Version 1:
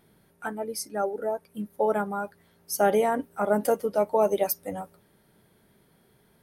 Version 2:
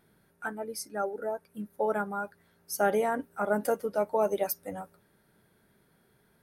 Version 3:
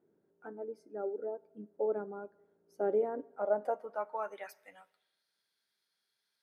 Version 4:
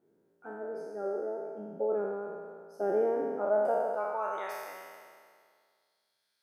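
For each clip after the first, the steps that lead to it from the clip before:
bell 1500 Hz +5.5 dB 0.43 oct; notch 3100 Hz, Q 21; gain -4.5 dB
band-pass sweep 380 Hz -> 4700 Hz, 3.09–5.26; on a send at -23.5 dB: reverb RT60 1.1 s, pre-delay 38 ms
spectral trails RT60 2.01 s

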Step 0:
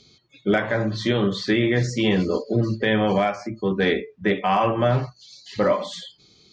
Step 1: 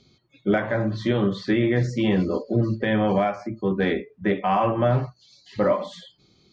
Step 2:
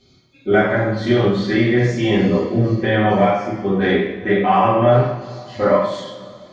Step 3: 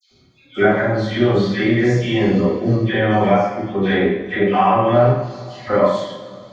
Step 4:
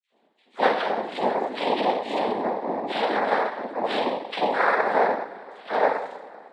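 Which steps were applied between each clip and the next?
high shelf 2500 Hz -11 dB; notch 440 Hz, Q 12
two-slope reverb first 0.73 s, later 3 s, from -18 dB, DRR -10 dB; gain -3 dB
dispersion lows, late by 0.112 s, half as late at 1800 Hz
Wiener smoothing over 9 samples; mistuned SSB +130 Hz 260–3100 Hz; noise vocoder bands 6; gain -6 dB

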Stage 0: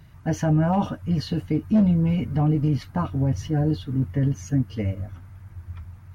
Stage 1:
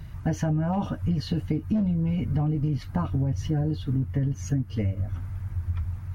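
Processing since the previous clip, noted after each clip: low shelf 93 Hz +11 dB; compressor 6:1, threshold -27 dBFS, peak gain reduction 13 dB; gain +4 dB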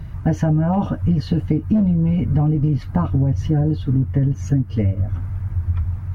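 high shelf 2100 Hz -9.5 dB; gain +8 dB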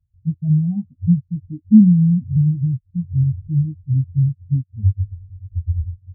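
in parallel at +1 dB: limiter -17.5 dBFS, peak gain reduction 10.5 dB; on the sum: spectral expander 4:1; gain +2.5 dB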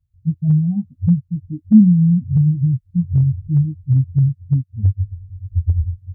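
recorder AGC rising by 7.6 dB/s

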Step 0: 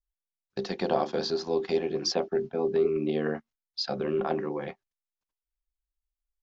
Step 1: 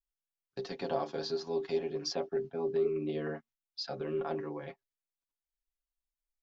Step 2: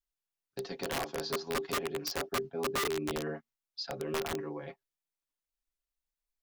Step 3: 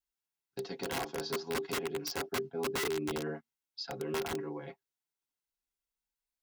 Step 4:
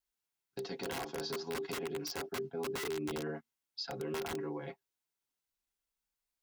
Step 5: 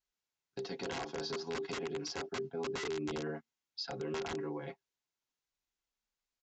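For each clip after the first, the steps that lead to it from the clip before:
comb 7.2 ms, depth 72%; gain -9 dB
wrapped overs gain 27 dB
notch comb 600 Hz
limiter -32.5 dBFS, peak gain reduction 7.5 dB; gain +1.5 dB
downsampling 16000 Hz

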